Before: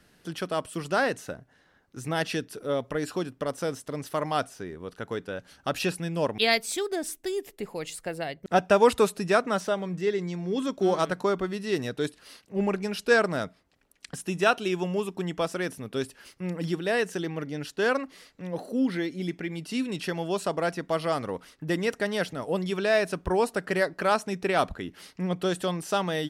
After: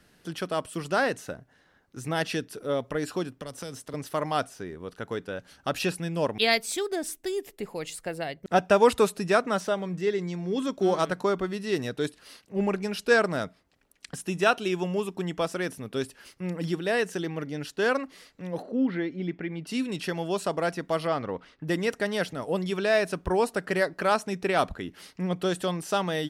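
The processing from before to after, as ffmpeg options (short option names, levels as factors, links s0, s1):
-filter_complex "[0:a]asettb=1/sr,asplit=3[s0][s1][s2];[s0]atrim=end=3.404[s3];[s1]atrim=start=3.4:end=3.94,asetpts=PTS-STARTPTS,afade=t=in:d=0.004:c=qsin,afade=t=out:st=0.536:d=0.004:c=qsin,acrossover=split=140|3000[s4][s5][s6];[s5]acompressor=threshold=0.0178:ratio=6:attack=3.2:release=140:knee=2.83:detection=peak[s7];[s4][s7][s6]amix=inputs=3:normalize=0[s8];[s2]atrim=start=3.936[s9];[s3][s8]acrossfade=d=0.004:c1=hsin:c2=qsin[s10];[s10][s9]acrossfade=d=0.004:c1=qsin:c2=hsin,asettb=1/sr,asplit=3[s11][s12][s13];[s11]atrim=end=18.624[s14];[s12]atrim=start=18.62:end=19.67,asetpts=PTS-STARTPTS,afade=t=in:d=0.004:c=qsin,afade=t=out:st=1.046:d=0.004:c=qsin,lowpass=2500[s15];[s13]atrim=start=19.666[s16];[s14][s15]acrossfade=d=0.004:c1=hsin:c2=qsin[s17];[s17][s16]acrossfade=d=0.004:c1=qsin:c2=hsin,asettb=1/sr,asplit=3[s18][s19][s20];[s18]atrim=end=21.074[s21];[s19]atrim=start=21.07:end=21.64,asetpts=PTS-STARTPTS,afade=t=in:d=0.004:c=qsin,afade=t=out:st=0.566:d=0.004:c=qsin,lowpass=3700[s22];[s20]atrim=start=21.636[s23];[s21][s22]acrossfade=d=0.004:c1=hsin:c2=qsin[s24];[s24][s23]acrossfade=d=0.004:c1=qsin:c2=hsin"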